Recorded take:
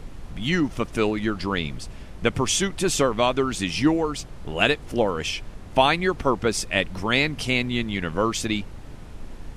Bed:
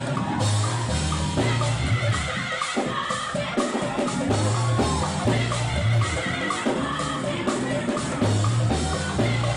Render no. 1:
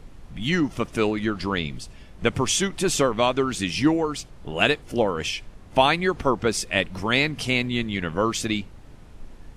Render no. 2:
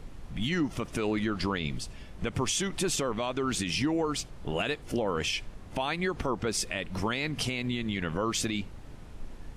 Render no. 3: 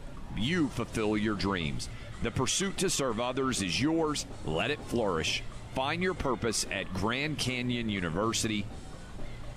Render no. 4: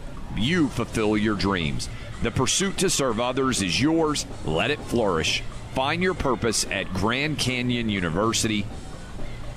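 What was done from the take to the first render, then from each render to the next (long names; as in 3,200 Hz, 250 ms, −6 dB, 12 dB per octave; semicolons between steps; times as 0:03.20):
noise reduction from a noise print 6 dB
downward compressor, threshold −22 dBFS, peak gain reduction 10 dB; brickwall limiter −19.5 dBFS, peak gain reduction 8.5 dB
mix in bed −23.5 dB
level +7 dB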